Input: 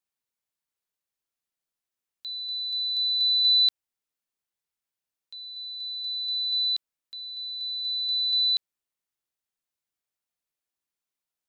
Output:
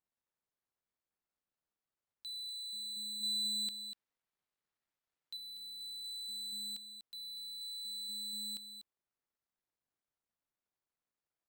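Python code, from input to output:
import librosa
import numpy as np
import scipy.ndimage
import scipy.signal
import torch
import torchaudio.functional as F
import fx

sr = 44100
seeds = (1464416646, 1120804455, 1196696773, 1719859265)

y = scipy.ndimage.median_filter(x, 15, mode='constant')
y = 10.0 ** (-38.0 / 20.0) * np.tanh(y / 10.0 ** (-38.0 / 20.0))
y = fx.peak_eq(y, sr, hz=3000.0, db=6.0, octaves=2.6, at=(3.23, 5.37))
y = y + 10.0 ** (-11.0 / 20.0) * np.pad(y, (int(244 * sr / 1000.0), 0))[:len(y)]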